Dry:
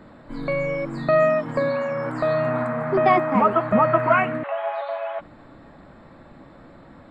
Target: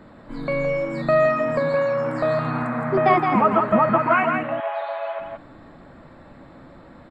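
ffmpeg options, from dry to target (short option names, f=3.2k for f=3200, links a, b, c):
-af "aecho=1:1:167:0.562"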